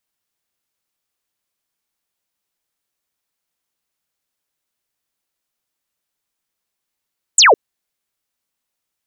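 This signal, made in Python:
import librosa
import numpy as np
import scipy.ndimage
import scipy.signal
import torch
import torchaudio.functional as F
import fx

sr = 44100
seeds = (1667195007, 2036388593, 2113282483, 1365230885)

y = fx.laser_zap(sr, level_db=-5.5, start_hz=8600.0, end_hz=370.0, length_s=0.16, wave='sine')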